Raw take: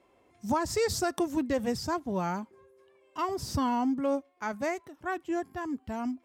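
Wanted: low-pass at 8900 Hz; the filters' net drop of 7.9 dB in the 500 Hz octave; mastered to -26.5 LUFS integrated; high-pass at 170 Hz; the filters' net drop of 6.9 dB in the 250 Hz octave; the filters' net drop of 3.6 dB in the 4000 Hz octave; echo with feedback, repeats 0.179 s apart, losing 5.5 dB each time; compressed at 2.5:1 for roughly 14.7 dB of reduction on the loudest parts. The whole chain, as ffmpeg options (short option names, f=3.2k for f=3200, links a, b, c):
-af "highpass=170,lowpass=8.9k,equalizer=f=250:t=o:g=-4.5,equalizer=f=500:t=o:g=-9,equalizer=f=4k:t=o:g=-4.5,acompressor=threshold=-51dB:ratio=2.5,aecho=1:1:179|358|537|716|895|1074|1253:0.531|0.281|0.149|0.079|0.0419|0.0222|0.0118,volume=21dB"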